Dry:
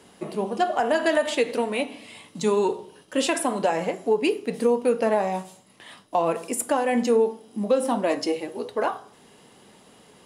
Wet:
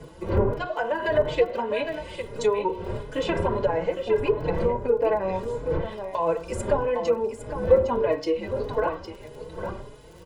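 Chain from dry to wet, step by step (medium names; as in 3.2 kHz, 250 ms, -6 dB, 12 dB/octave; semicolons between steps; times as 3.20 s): wind noise 410 Hz -32 dBFS; low-pass 10 kHz 12 dB/octave; comb 2 ms, depth 58%; low-pass that closes with the level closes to 1.2 kHz, closed at -15 dBFS; crackle 13 per s -34 dBFS; on a send: delay 808 ms -8.5 dB; on the sum: endless flanger 4.3 ms +1.6 Hz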